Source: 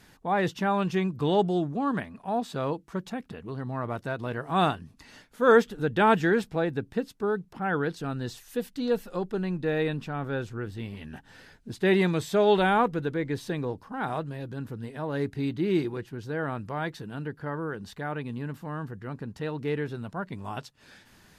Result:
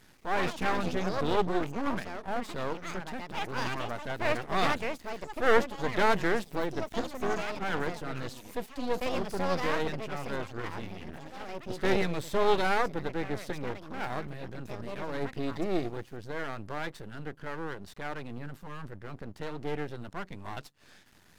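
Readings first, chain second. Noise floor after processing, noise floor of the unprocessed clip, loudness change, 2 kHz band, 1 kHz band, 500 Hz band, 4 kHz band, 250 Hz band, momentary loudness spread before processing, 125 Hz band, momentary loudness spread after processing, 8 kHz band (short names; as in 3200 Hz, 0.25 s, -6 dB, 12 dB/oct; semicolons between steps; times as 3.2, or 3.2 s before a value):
-57 dBFS, -58 dBFS, -4.0 dB, -1.5 dB, -3.0 dB, -4.5 dB, 0.0 dB, -6.5 dB, 14 LU, -7.0 dB, 14 LU, +1.5 dB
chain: echoes that change speed 0.149 s, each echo +5 st, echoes 2, each echo -6 dB; half-wave rectifier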